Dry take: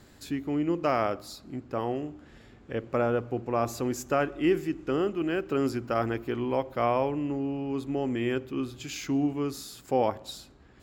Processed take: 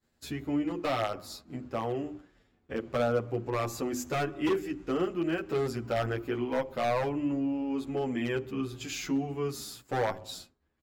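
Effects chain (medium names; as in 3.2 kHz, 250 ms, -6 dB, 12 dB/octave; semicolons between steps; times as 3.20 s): hum notches 50/100/150/200/250/300/350/400 Hz; expander -41 dBFS; in parallel at 0 dB: compression 8:1, threshold -40 dBFS, peak gain reduction 20 dB; on the sum: wavefolder -18.5 dBFS; endless flanger 9.1 ms -0.76 Hz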